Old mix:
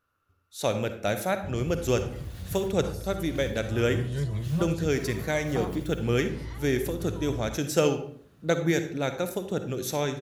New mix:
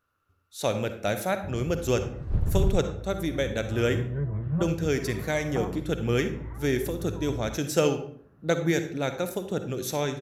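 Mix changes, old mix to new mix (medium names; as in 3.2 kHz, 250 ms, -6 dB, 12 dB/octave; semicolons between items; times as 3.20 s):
first sound: add low-pass 1.6 kHz 24 dB/octave; second sound: unmuted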